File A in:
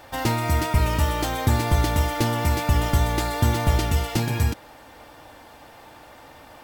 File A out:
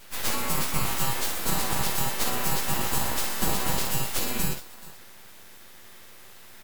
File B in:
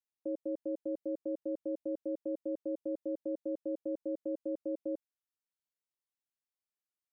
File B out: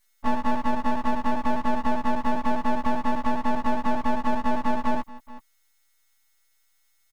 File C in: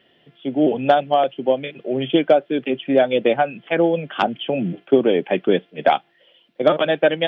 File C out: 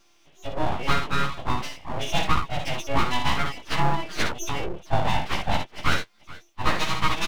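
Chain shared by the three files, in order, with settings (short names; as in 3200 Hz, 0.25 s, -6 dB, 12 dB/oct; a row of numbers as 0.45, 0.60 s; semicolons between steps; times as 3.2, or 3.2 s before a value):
frequency quantiser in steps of 2 st; on a send: tapped delay 57/430 ms -5.5/-19.5 dB; on the sum: spectral gate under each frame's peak -30 dB strong; full-wave rectifier; match loudness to -27 LUFS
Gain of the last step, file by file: -3.5, +17.0, -4.0 dB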